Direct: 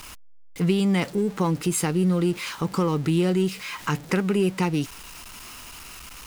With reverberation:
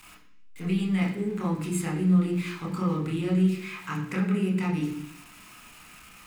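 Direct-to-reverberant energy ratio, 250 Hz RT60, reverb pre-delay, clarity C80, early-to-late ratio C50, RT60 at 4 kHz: −3.0 dB, 0.85 s, 24 ms, 9.5 dB, 7.0 dB, 0.95 s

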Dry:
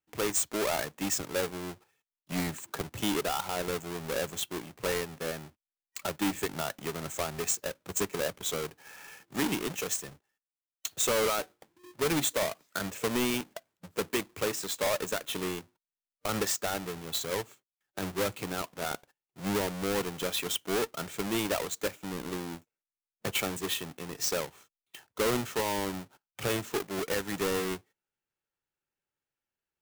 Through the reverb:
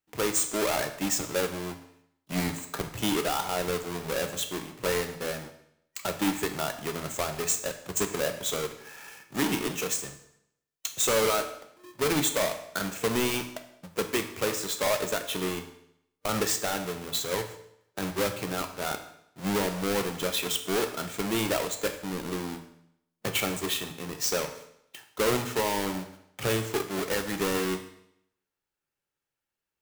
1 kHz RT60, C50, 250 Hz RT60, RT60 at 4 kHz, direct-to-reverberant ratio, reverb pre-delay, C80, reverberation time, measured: 0.75 s, 10.0 dB, 0.75 s, 0.70 s, 6.0 dB, 9 ms, 12.5 dB, 0.75 s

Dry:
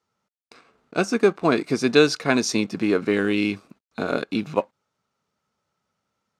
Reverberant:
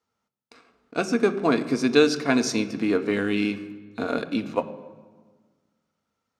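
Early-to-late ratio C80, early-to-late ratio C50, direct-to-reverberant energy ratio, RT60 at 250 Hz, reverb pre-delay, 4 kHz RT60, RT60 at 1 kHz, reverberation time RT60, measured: 15.0 dB, 13.5 dB, 9.0 dB, 1.8 s, 3 ms, 1.1 s, 1.4 s, 1.5 s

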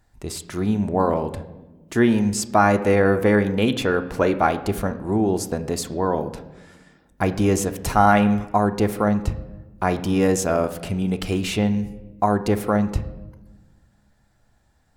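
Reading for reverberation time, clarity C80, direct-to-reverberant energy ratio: 1.2 s, 15.5 dB, 8.5 dB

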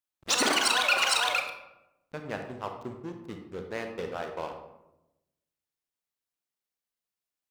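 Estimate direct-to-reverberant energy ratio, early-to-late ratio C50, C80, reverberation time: 4.5 dB, 6.5 dB, 9.0 dB, 0.90 s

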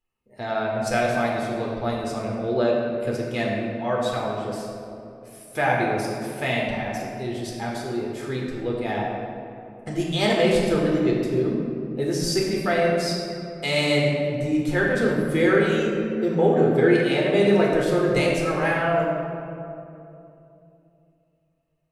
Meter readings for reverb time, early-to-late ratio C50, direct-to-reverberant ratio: 2.9 s, 0.0 dB, −4.0 dB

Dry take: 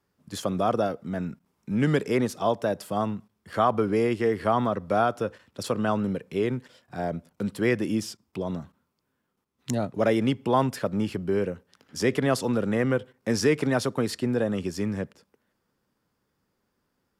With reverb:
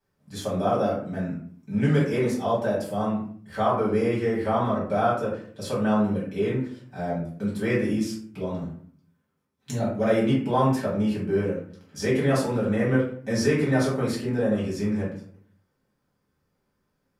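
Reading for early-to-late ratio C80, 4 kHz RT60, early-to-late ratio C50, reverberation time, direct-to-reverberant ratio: 8.0 dB, 0.30 s, 3.5 dB, 0.50 s, −7.5 dB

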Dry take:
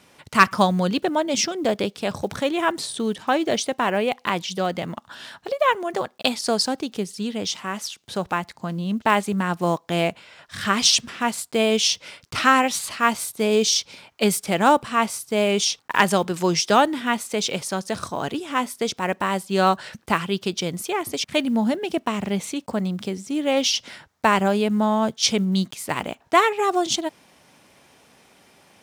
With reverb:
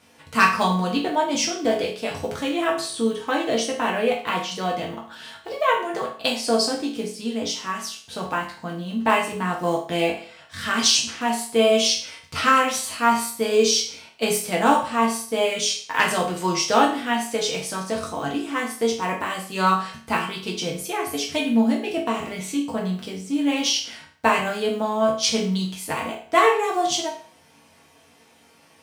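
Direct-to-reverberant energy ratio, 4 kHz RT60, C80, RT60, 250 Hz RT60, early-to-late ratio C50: −3.0 dB, 0.45 s, 11.5 dB, 0.45 s, 0.45 s, 7.0 dB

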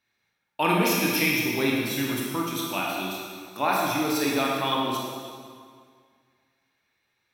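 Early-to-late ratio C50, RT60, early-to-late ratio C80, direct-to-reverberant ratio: −1.0 dB, 2.0 s, 1.0 dB, −3.5 dB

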